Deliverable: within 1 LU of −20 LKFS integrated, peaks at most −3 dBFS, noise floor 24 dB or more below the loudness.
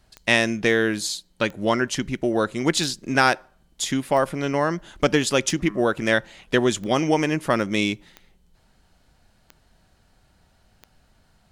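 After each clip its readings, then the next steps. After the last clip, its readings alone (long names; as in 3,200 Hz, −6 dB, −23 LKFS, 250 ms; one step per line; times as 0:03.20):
number of clicks 9; integrated loudness −22.5 LKFS; sample peak −4.0 dBFS; target loudness −20.0 LKFS
→ click removal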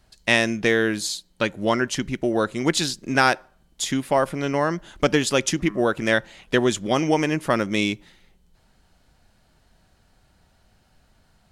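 number of clicks 0; integrated loudness −22.5 LKFS; sample peak −4.0 dBFS; target loudness −20.0 LKFS
→ level +2.5 dB
brickwall limiter −3 dBFS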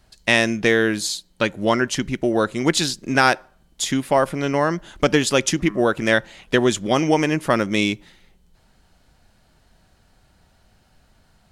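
integrated loudness −20.0 LKFS; sample peak −3.0 dBFS; background noise floor −59 dBFS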